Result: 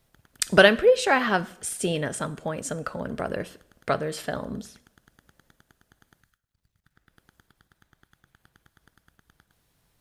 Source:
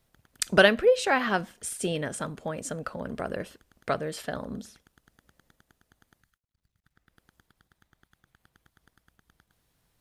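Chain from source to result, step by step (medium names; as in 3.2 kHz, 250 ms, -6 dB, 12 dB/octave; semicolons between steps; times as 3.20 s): two-slope reverb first 0.67 s, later 2.7 s, from -27 dB, DRR 16 dB; trim +3 dB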